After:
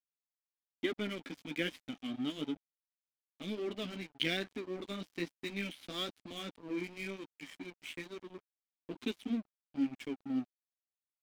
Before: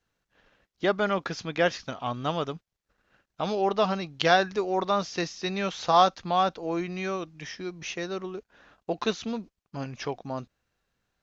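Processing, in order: vowel filter i; flange 1.1 Hz, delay 7.2 ms, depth 9.4 ms, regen -21%; crossover distortion -57.5 dBFS; trim +10.5 dB

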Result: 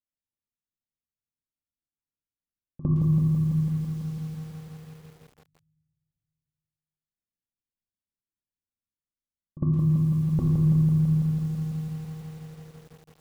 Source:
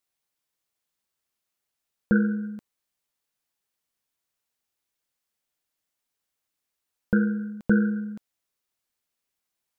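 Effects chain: band-stop 1.1 kHz, Q 12; gate -30 dBFS, range -15 dB; FFT filter 240 Hz 0 dB, 500 Hz -8 dB, 1.3 kHz -20 dB; compression 4:1, threshold -32 dBFS, peak gain reduction 12.5 dB; pre-echo 41 ms -17.5 dB; reverberation RT60 1.5 s, pre-delay 3 ms, DRR 2 dB; speed mistake 45 rpm record played at 33 rpm; bit-crushed delay 166 ms, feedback 80%, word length 10-bit, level -5 dB; trim +8 dB

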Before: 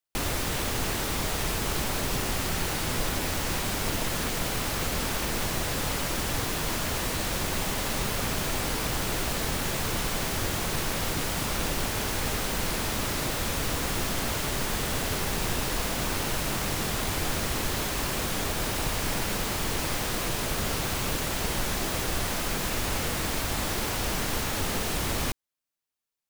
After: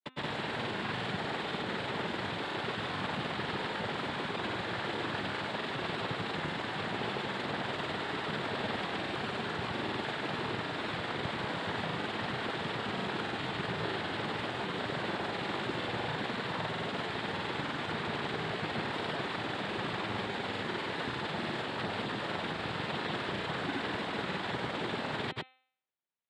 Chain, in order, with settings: mistuned SSB -120 Hz 220–3000 Hz; noise-vocoded speech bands 6; granulator, pitch spread up and down by 0 st; de-hum 258.2 Hz, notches 16

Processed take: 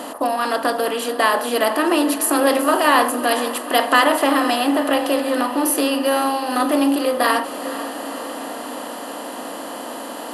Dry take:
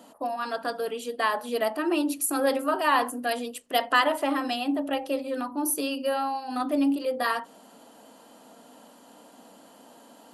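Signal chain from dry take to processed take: spectral levelling over time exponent 0.6; echo that smears into a reverb 490 ms, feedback 64%, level -13 dB; trim +5 dB

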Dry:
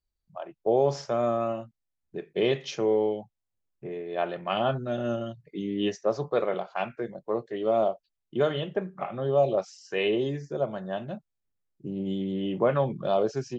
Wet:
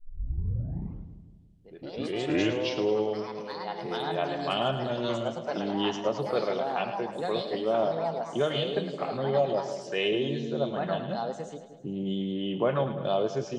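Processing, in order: tape start-up on the opening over 2.98 s; peaking EQ 3.2 kHz +6.5 dB 0.48 oct; in parallel at -2.5 dB: compression, threshold -34 dBFS, peak gain reduction 15.5 dB; on the sum: hard clipper -11 dBFS, distortion -51 dB; ever faster or slower copies 158 ms, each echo +3 st, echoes 3, each echo -6 dB; on a send: two-band feedback delay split 620 Hz, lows 169 ms, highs 108 ms, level -10 dB; on the sum: trim -4 dB

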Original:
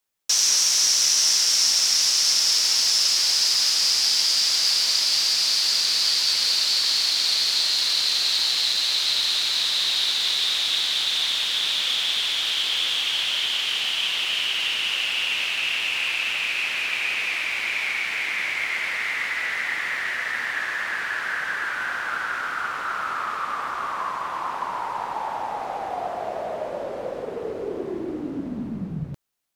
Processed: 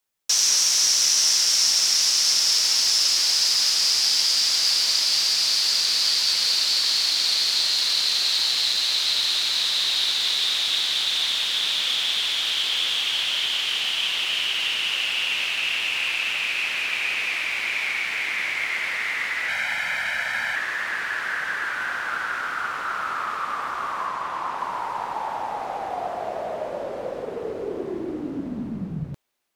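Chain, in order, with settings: 19.48–20.56 s: comb 1.3 ms, depth 85%; 24.06–24.59 s: treble shelf 12 kHz -7 dB; feedback echo behind a high-pass 740 ms, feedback 51%, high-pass 3 kHz, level -23 dB

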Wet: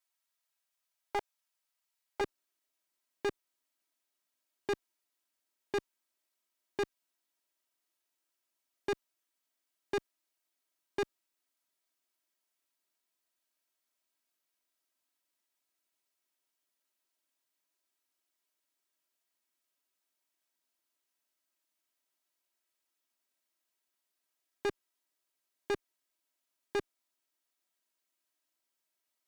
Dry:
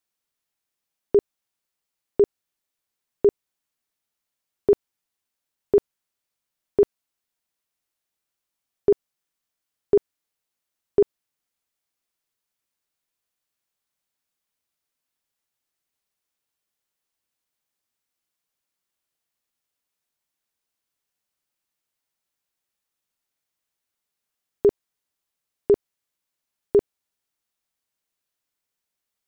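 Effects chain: comb filter that takes the minimum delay 3.1 ms; high-pass 690 Hz 12 dB/octave, from 2.21 s 230 Hz; saturation -28.5 dBFS, distortion -6 dB

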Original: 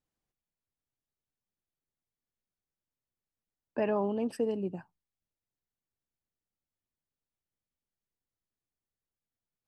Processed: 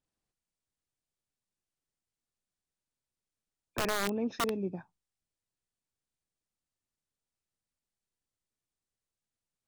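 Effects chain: knee-point frequency compression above 2.1 kHz 1.5:1; dynamic bell 770 Hz, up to -4 dB, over -41 dBFS, Q 1.4; integer overflow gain 24 dB

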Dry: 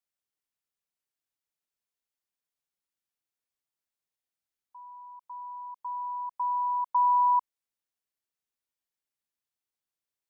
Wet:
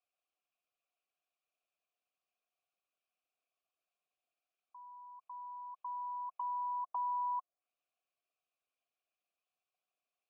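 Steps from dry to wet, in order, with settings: resonances exaggerated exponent 1.5; low-pass that closes with the level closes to 1 kHz, closed at -30 dBFS; peaking EQ 900 Hz -11 dB 0.58 oct; peak limiter -35 dBFS, peak gain reduction 4 dB; vowel filter a; trim +17.5 dB

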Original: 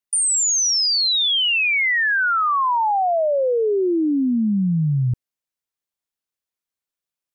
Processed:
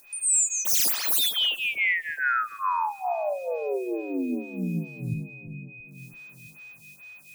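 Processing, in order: 0.65–1.19 s: self-modulated delay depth 0.64 ms; tilt shelf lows -3.5 dB, about 1.5 kHz; upward compressor, threshold -23 dBFS; bit crusher 8-bit; whistle 2.5 kHz -41 dBFS; two-band feedback delay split 730 Hz, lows 333 ms, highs 100 ms, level -6 dB; reverberation RT60 0.45 s, pre-delay 7 ms, DRR 16 dB; lamp-driven phase shifter 2.3 Hz; trim -6 dB

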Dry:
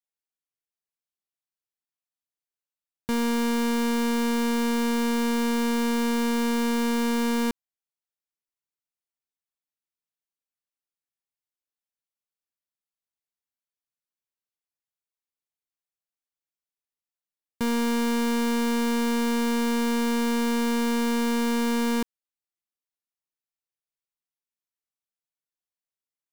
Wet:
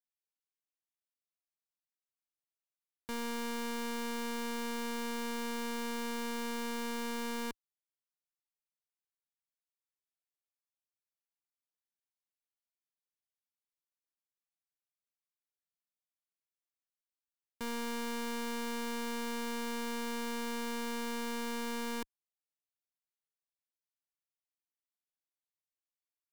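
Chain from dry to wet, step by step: peaking EQ 110 Hz -10.5 dB 3 oct; trim -9 dB

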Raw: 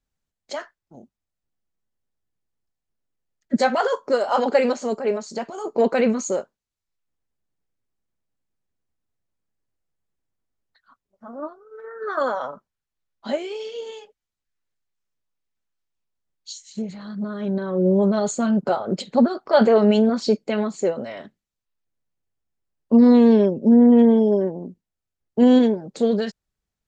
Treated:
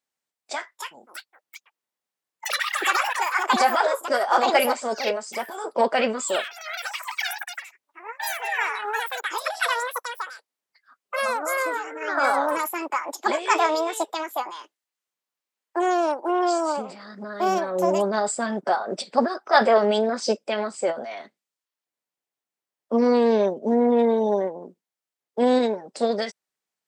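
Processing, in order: Bessel high-pass 480 Hz, order 2; ever faster or slower copies 462 ms, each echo +7 st, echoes 3; formant shift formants +2 st; trim +1.5 dB

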